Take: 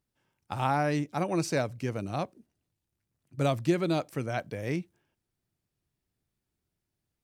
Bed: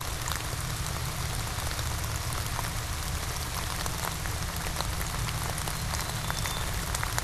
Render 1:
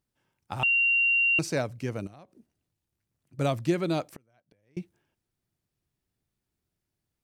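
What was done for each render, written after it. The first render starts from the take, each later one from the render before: 0.63–1.39 s: bleep 2.76 kHz -20 dBFS; 2.07–3.39 s: compression 5:1, threshold -48 dBFS; 4.05–4.77 s: inverted gate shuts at -33 dBFS, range -35 dB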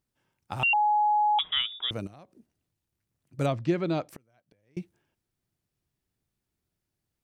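0.73–1.91 s: frequency inversion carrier 3.6 kHz; 3.46–4.09 s: distance through air 140 m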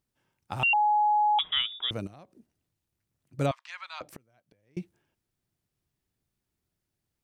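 3.51–4.01 s: elliptic high-pass 970 Hz, stop band 70 dB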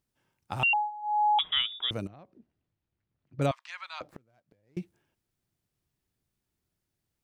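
0.61–1.32 s: dip -17.5 dB, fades 0.30 s equal-power; 2.07–3.42 s: distance through air 250 m; 4.03–4.79 s: median filter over 15 samples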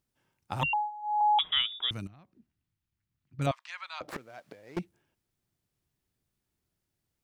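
0.61–1.21 s: rippled EQ curve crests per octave 1.1, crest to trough 18 dB; 1.90–3.47 s: peaking EQ 520 Hz -13.5 dB 1.4 oct; 4.08–4.79 s: overdrive pedal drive 30 dB, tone 5 kHz, clips at -23.5 dBFS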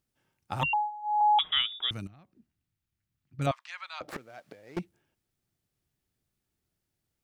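band-stop 1 kHz, Q 14; dynamic bell 1.2 kHz, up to +3 dB, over -39 dBFS, Q 1.1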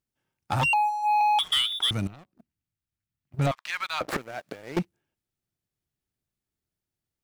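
compression 6:1, threshold -28 dBFS, peak gain reduction 7.5 dB; waveshaping leveller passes 3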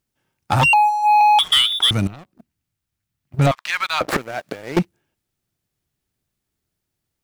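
trim +9 dB

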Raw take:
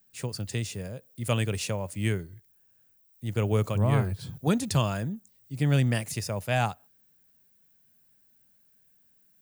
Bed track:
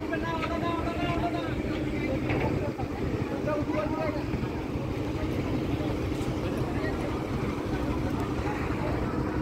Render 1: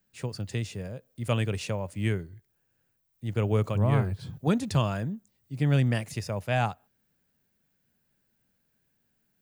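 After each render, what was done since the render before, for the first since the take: treble shelf 6.1 kHz -12 dB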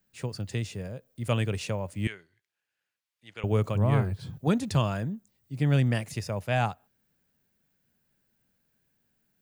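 2.07–3.44 s: band-pass filter 2.8 kHz, Q 0.85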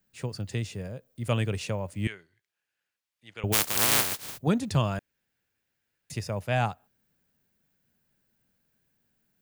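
3.52–4.37 s: spectral contrast reduction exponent 0.11; 4.99–6.10 s: room tone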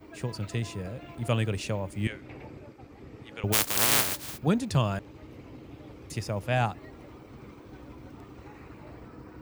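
add bed track -17 dB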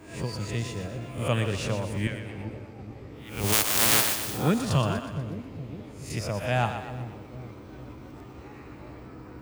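reverse spectral sustain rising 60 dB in 0.43 s; on a send: two-band feedback delay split 500 Hz, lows 419 ms, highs 122 ms, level -8.5 dB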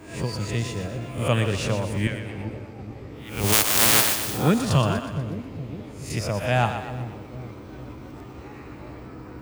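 trim +4 dB; peak limiter -2 dBFS, peak gain reduction 2 dB

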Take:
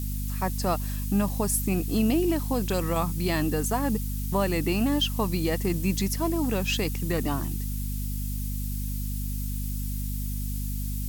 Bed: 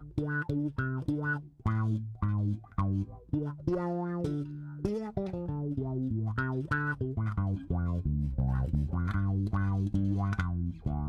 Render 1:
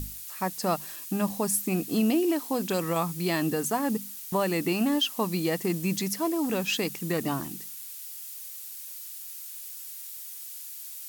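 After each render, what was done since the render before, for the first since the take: hum notches 50/100/150/200/250 Hz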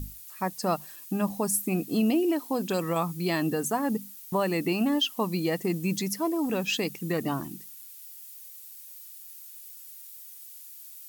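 noise reduction 8 dB, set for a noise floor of -41 dBFS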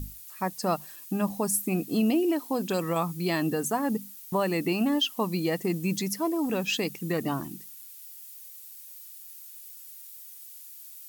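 no audible change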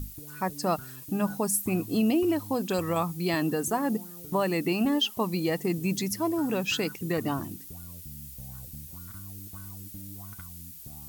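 add bed -15 dB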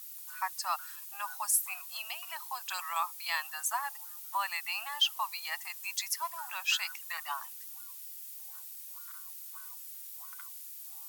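steep high-pass 860 Hz 48 dB/octave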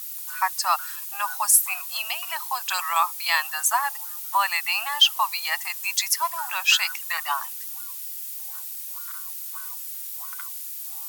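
trim +11 dB

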